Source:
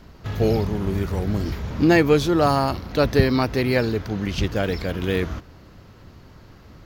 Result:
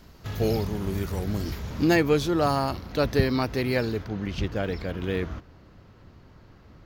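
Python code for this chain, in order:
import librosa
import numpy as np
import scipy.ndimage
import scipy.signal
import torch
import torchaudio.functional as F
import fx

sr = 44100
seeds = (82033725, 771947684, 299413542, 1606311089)

y = fx.high_shelf(x, sr, hz=4800.0, db=fx.steps((0.0, 9.5), (1.94, 2.0), (4.03, -8.0)))
y = y * librosa.db_to_amplitude(-5.0)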